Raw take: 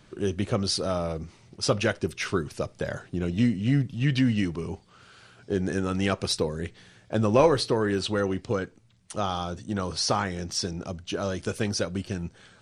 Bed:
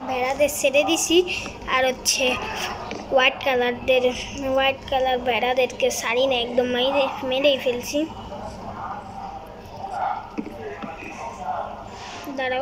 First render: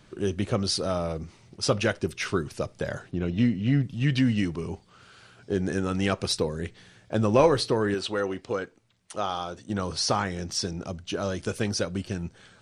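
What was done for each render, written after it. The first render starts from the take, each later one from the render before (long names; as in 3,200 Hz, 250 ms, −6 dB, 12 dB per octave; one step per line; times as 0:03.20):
0:03.11–0:03.83: low-pass filter 4,400 Hz
0:07.94–0:09.70: bass and treble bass −10 dB, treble −3 dB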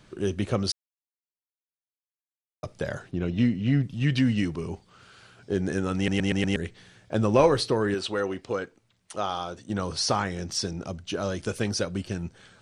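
0:00.72–0:02.63: silence
0:05.96: stutter in place 0.12 s, 5 plays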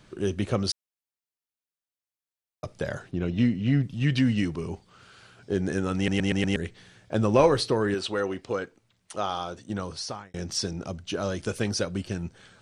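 0:09.58–0:10.34: fade out linear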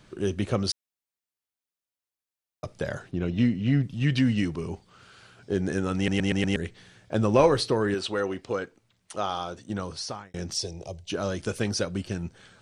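0:10.54–0:11.10: phaser with its sweep stopped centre 570 Hz, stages 4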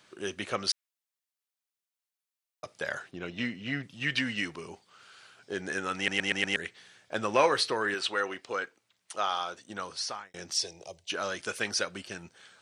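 high-pass filter 950 Hz 6 dB per octave
dynamic equaliser 1,800 Hz, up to +6 dB, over −46 dBFS, Q 0.87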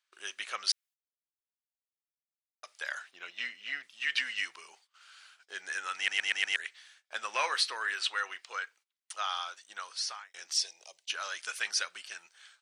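noise gate −56 dBFS, range −21 dB
high-pass filter 1,300 Hz 12 dB per octave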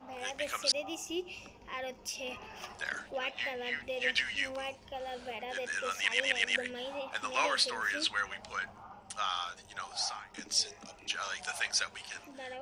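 mix in bed −19.5 dB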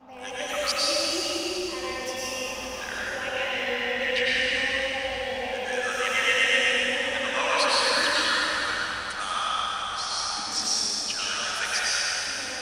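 delay that swaps between a low-pass and a high-pass 332 ms, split 1,000 Hz, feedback 52%, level −11 dB
dense smooth reverb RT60 3.5 s, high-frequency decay 1×, pre-delay 85 ms, DRR −8.5 dB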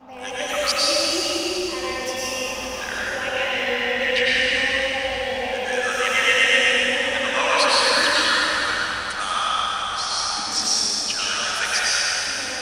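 level +5 dB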